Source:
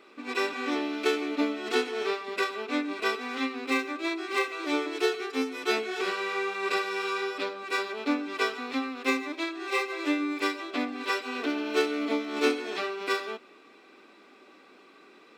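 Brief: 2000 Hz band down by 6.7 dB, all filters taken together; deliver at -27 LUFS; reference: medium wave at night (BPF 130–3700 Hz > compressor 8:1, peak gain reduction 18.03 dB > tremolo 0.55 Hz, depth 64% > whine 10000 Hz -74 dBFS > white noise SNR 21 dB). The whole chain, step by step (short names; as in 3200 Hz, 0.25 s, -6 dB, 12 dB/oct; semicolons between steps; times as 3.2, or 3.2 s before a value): BPF 130–3700 Hz; bell 2000 Hz -8.5 dB; compressor 8:1, threshold -39 dBFS; tremolo 0.55 Hz, depth 64%; whine 10000 Hz -74 dBFS; white noise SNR 21 dB; gain +18.5 dB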